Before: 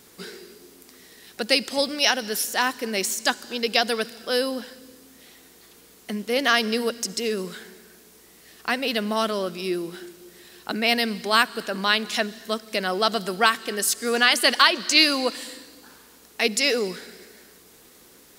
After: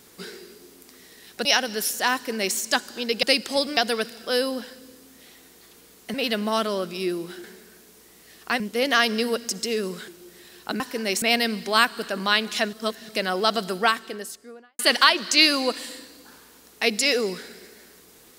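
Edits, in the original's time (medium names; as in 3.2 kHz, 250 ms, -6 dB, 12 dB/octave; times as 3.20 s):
1.45–1.99 s: move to 3.77 s
2.68–3.10 s: copy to 10.80 s
6.14–7.62 s: swap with 8.78–10.08 s
12.31–12.67 s: reverse
13.23–14.37 s: studio fade out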